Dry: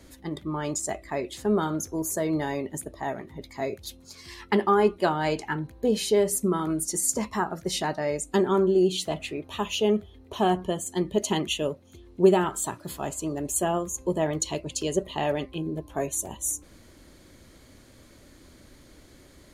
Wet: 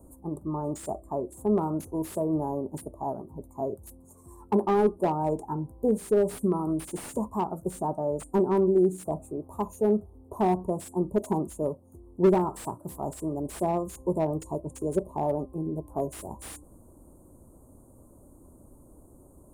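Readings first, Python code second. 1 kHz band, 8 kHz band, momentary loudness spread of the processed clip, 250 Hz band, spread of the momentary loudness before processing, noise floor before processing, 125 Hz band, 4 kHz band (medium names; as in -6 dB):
-2.0 dB, -14.5 dB, 12 LU, -0.5 dB, 12 LU, -53 dBFS, 0.0 dB, under -15 dB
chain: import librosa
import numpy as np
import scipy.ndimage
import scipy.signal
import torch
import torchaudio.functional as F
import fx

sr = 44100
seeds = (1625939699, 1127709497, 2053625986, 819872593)

y = scipy.signal.sosfilt(scipy.signal.ellip(3, 1.0, 40, [1000.0, 8500.0], 'bandstop', fs=sr, output='sos'), x)
y = fx.slew_limit(y, sr, full_power_hz=64.0)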